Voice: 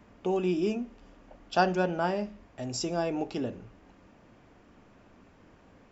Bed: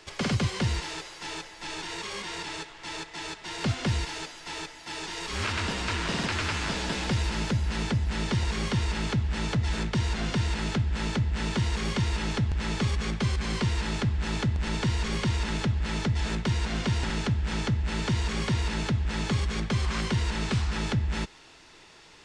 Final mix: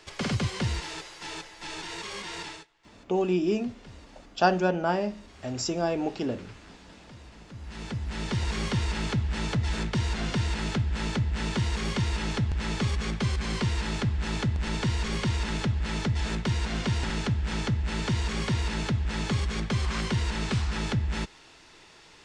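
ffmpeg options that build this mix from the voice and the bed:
ffmpeg -i stem1.wav -i stem2.wav -filter_complex "[0:a]adelay=2850,volume=2.5dB[link_01];[1:a]volume=19.5dB,afade=type=out:start_time=2.44:duration=0.23:silence=0.1,afade=type=in:start_time=7.48:duration=1.06:silence=0.0891251[link_02];[link_01][link_02]amix=inputs=2:normalize=0" out.wav

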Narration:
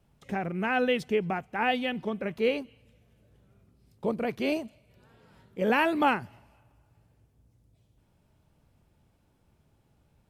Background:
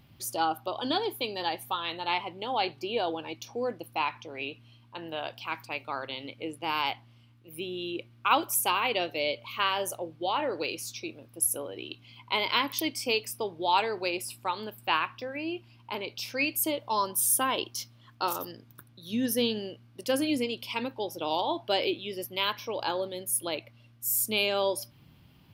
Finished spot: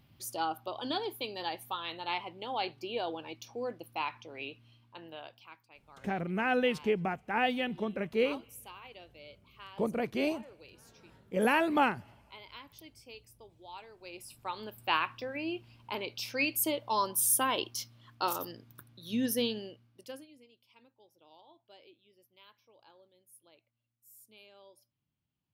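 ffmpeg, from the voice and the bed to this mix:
ffmpeg -i stem1.wav -i stem2.wav -filter_complex "[0:a]adelay=5750,volume=-2.5dB[link_01];[1:a]volume=15dB,afade=type=out:start_time=4.7:duration=0.9:silence=0.141254,afade=type=in:start_time=13.99:duration=0.99:silence=0.0944061,afade=type=out:start_time=19.2:duration=1.07:silence=0.0398107[link_02];[link_01][link_02]amix=inputs=2:normalize=0" out.wav

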